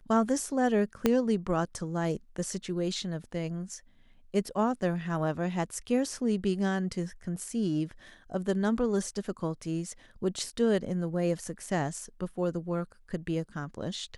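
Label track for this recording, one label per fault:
1.060000	1.060000	pop -10 dBFS

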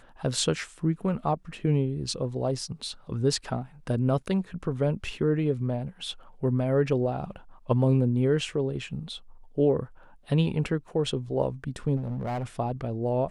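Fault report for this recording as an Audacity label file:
11.960000	12.440000	clipped -27 dBFS

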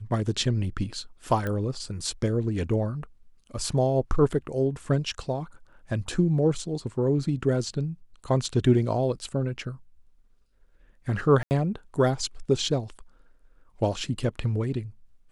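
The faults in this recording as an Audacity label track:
1.470000	1.470000	pop -18 dBFS
11.430000	11.510000	dropout 79 ms

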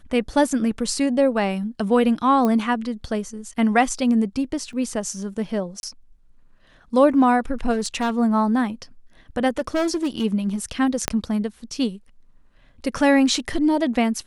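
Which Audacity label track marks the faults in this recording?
2.450000	2.450000	pop -11 dBFS
4.730000	4.730000	dropout 2.9 ms
5.800000	5.830000	dropout 31 ms
7.720000	8.110000	clipped -18 dBFS
9.490000	10.250000	clipped -18 dBFS
11.080000	11.080000	pop -3 dBFS

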